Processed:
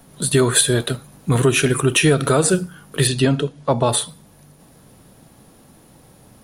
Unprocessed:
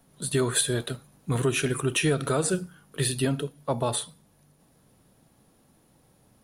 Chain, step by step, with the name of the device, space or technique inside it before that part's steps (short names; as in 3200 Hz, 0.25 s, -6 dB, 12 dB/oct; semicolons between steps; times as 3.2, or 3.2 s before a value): parallel compression (in parallel at -2.5 dB: compressor, threshold -37 dBFS, peak gain reduction 16.5 dB); 3.07–3.89 on the sum: LPF 7700 Hz 24 dB/oct; gain +8 dB